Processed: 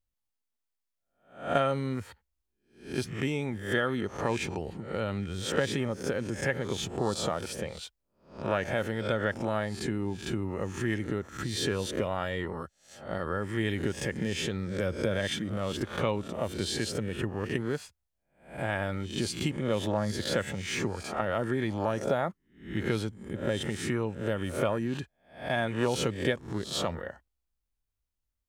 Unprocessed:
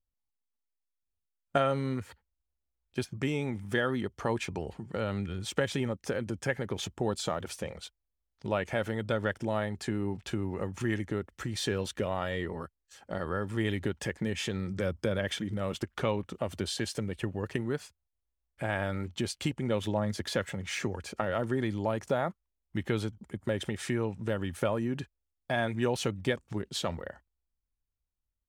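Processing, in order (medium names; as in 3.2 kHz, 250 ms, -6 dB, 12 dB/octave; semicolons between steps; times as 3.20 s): reverse spectral sustain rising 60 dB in 0.43 s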